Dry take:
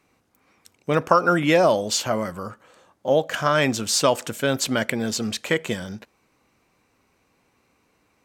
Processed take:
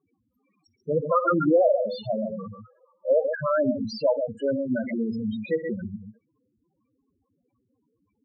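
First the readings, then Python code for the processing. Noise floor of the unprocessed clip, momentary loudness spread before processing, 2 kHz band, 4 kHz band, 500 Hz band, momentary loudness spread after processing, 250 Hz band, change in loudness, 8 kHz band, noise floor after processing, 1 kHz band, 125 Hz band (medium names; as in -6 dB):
-67 dBFS, 14 LU, -12.0 dB, -17.0 dB, -1.0 dB, 15 LU, -1.5 dB, -3.5 dB, under -30 dB, -75 dBFS, -6.5 dB, -6.5 dB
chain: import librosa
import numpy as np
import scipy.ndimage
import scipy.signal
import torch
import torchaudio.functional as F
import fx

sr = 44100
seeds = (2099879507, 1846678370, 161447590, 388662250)

y = fx.echo_multitap(x, sr, ms=(56, 119, 137), db=(-12.0, -17.0, -7.0))
y = fx.env_lowpass_down(y, sr, base_hz=2100.0, full_db=-13.5)
y = fx.spec_topn(y, sr, count=4)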